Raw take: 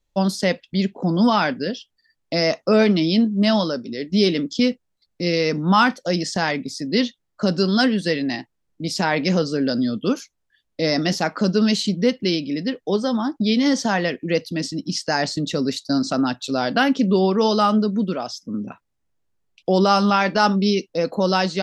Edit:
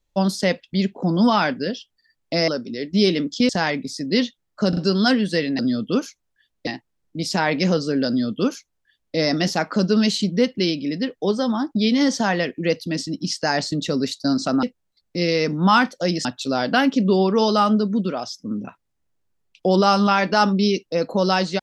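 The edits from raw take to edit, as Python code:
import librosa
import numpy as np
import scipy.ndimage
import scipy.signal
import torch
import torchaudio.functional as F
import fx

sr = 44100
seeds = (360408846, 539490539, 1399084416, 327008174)

y = fx.edit(x, sr, fx.cut(start_s=2.48, length_s=1.19),
    fx.move(start_s=4.68, length_s=1.62, to_s=16.28),
    fx.stutter(start_s=7.5, slice_s=0.04, count=3),
    fx.duplicate(start_s=9.73, length_s=1.08, to_s=8.32), tone=tone)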